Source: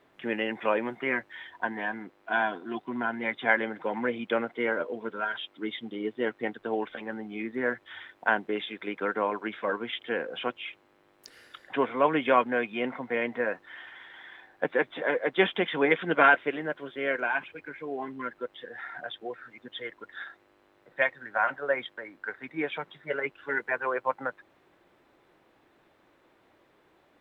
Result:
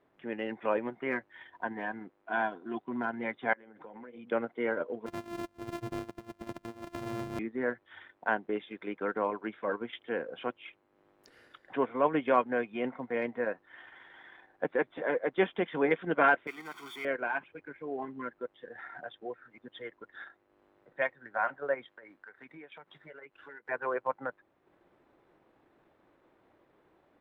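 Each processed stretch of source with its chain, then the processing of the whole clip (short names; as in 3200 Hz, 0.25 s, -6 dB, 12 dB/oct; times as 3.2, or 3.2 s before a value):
3.53–4.32 notches 60/120/180/240/300/360/420/480/540 Hz + compressor 16:1, threshold -41 dBFS
5.06–7.39 sample sorter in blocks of 128 samples + negative-ratio compressor -35 dBFS, ratio -0.5
16.47–17.05 zero-crossing step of -35.5 dBFS + HPF 1400 Hz 6 dB/oct + comb 0.9 ms, depth 96%
21.88–23.69 compressor 8:1, threshold -42 dBFS + tilt shelf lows -3.5 dB, about 780 Hz
whole clip: high shelf 2200 Hz -11.5 dB; transient shaper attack -2 dB, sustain -6 dB; AGC gain up to 4 dB; gain -5 dB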